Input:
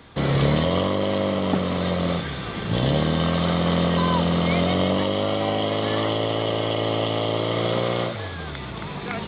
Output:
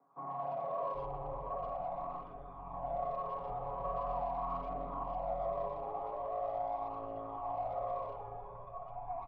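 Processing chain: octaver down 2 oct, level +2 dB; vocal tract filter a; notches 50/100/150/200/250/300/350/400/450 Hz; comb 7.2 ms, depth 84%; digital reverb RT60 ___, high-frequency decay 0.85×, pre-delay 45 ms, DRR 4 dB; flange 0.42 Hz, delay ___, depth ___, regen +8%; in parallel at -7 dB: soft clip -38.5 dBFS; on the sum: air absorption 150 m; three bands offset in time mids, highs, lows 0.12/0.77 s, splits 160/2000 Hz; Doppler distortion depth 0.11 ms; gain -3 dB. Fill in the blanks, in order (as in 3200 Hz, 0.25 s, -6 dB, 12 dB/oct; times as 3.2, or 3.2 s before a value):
2.6 s, 0.5 ms, 1.9 ms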